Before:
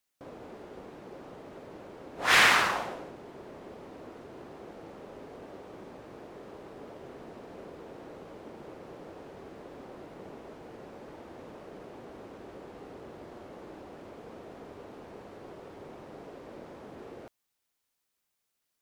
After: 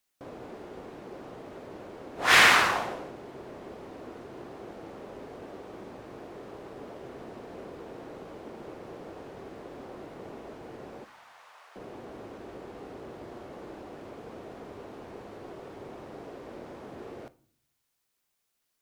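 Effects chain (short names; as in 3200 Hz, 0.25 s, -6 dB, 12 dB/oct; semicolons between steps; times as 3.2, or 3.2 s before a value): 11.04–11.76 HPF 920 Hz 24 dB/oct; on a send: reverb RT60 0.55 s, pre-delay 3 ms, DRR 14.5 dB; on the sum: gain +2.5 dB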